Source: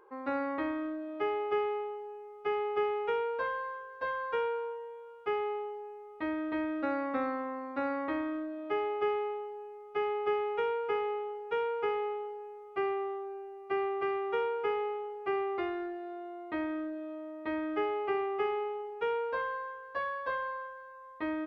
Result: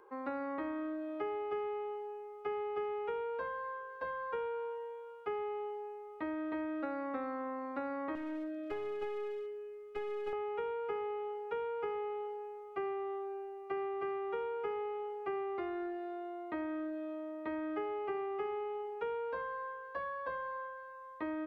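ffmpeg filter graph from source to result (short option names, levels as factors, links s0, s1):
-filter_complex "[0:a]asettb=1/sr,asplit=3[s0][s1][s2];[s0]atrim=end=8.154[s3];[s1]atrim=start=8.15:end=10.33,asetpts=PTS-STARTPTS,afade=t=in:d=0.004:c=qsin,afade=t=out:st=2.176:d=0.004:c=qsin,asuperstop=centerf=940:order=4:qfactor=1.2,aeval=exprs='clip(val(0),-1,0.0112)':c=same[s4];[s2]atrim=start=10.326[s5];[s3][s4]acrossfade=d=0.004:c1=hsin:c2=qsin[s6];[s6][s5]acrossfade=d=0.004:c1=qsin:c2=hsin,bandreject=f=50:t=h:w=6,bandreject=f=100:t=h:w=6,acrossover=split=290|1700[s7][s8][s9];[s7]acompressor=threshold=0.00447:ratio=4[s10];[s8]acompressor=threshold=0.0126:ratio=4[s11];[s9]acompressor=threshold=0.00126:ratio=4[s12];[s10][s11][s12]amix=inputs=3:normalize=0"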